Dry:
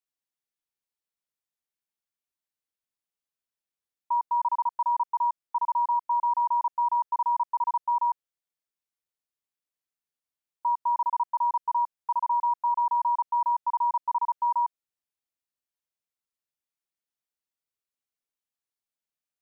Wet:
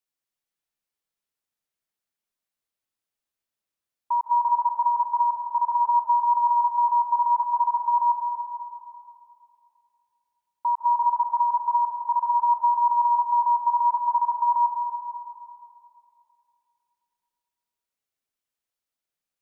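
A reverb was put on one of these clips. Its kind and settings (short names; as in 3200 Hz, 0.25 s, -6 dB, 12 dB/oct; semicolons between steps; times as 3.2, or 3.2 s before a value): digital reverb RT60 2.7 s, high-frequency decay 0.5×, pre-delay 0.115 s, DRR 2.5 dB; gain +2 dB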